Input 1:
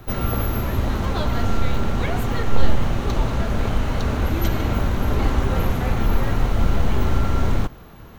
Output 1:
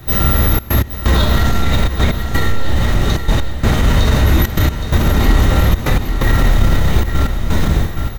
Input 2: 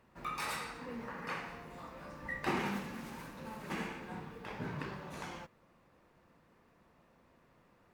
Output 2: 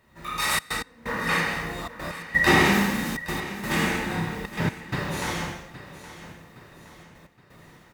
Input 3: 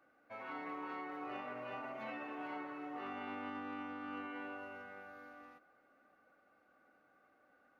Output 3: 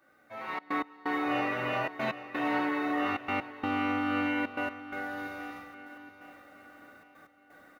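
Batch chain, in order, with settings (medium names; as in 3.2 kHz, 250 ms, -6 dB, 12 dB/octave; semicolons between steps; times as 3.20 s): in parallel at -4 dB: crossover distortion -31.5 dBFS; on the sum: treble shelf 3.9 kHz +9 dB; hum notches 60/120 Hz; level rider gain up to 8 dB; gated-style reverb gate 310 ms falling, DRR -3.5 dB; trance gate "xxxxx.x..xx" 128 bpm -24 dB; on a send: feedback delay 818 ms, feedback 43%, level -14.5 dB; on the sum: peak limiter -7 dBFS; peaking EQ 63 Hz +6 dB 2.9 oct; small resonant body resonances 1.9/3.7 kHz, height 10 dB, ringing for 25 ms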